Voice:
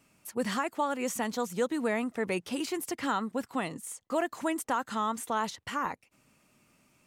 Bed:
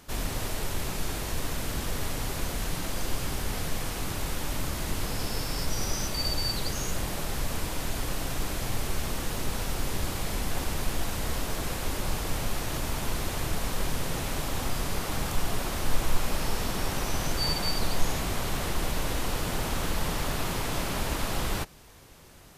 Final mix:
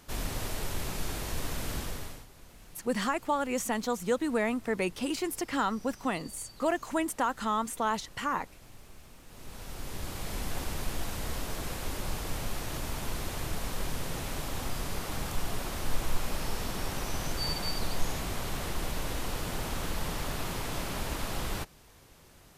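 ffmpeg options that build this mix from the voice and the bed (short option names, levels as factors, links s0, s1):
-filter_complex "[0:a]adelay=2500,volume=1.12[s0];[1:a]volume=5.31,afade=t=out:st=1.75:d=0.51:silence=0.112202,afade=t=in:st=9.26:d=1.16:silence=0.133352[s1];[s0][s1]amix=inputs=2:normalize=0"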